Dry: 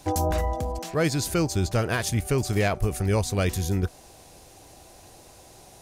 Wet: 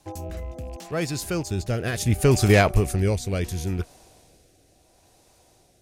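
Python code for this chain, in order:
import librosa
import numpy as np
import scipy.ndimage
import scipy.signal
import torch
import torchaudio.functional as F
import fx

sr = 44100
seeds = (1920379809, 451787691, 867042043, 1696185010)

y = fx.rattle_buzz(x, sr, strikes_db=-31.0, level_db=-36.0)
y = fx.doppler_pass(y, sr, speed_mps=11, closest_m=5.4, pass_at_s=2.5)
y = fx.rotary(y, sr, hz=0.7)
y = y * librosa.db_to_amplitude(7.5)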